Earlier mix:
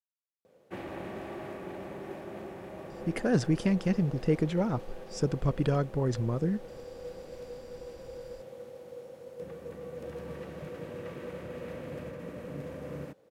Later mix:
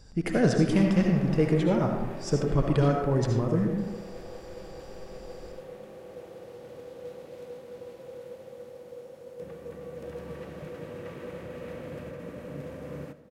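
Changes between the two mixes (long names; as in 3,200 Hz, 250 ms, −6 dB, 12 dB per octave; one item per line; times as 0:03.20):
speech: entry −2.90 s
reverb: on, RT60 0.90 s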